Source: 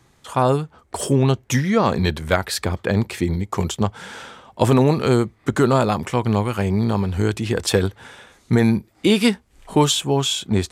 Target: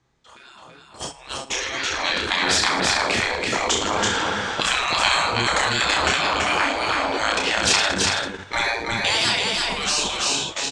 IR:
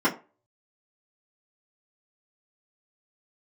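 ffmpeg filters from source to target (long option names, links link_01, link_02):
-filter_complex "[0:a]asplit=2[link_01][link_02];[link_02]aecho=0:1:30|66|109.2|161|223.2:0.631|0.398|0.251|0.158|0.1[link_03];[link_01][link_03]amix=inputs=2:normalize=0,afftfilt=real='re*lt(hypot(re,im),0.158)':imag='im*lt(hypot(re,im),0.158)':win_size=1024:overlap=0.75,dynaudnorm=framelen=540:gausssize=7:maxgain=14dB,asplit=2[link_04][link_05];[link_05]aecho=0:1:331:0.708[link_06];[link_04][link_06]amix=inputs=2:normalize=0,agate=range=-11dB:threshold=-26dB:ratio=16:detection=peak,lowpass=frequency=7000:width=0.5412,lowpass=frequency=7000:width=1.3066,bandreject=frequency=50:width_type=h:width=6,bandreject=frequency=100:width_type=h:width=6,bandreject=frequency=150:width_type=h:width=6,volume=-1.5dB"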